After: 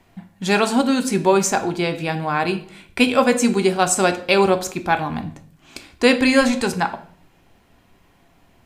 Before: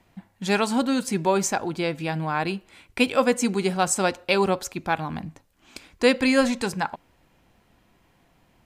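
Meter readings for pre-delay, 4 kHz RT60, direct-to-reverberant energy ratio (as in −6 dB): 3 ms, 0.45 s, 7.5 dB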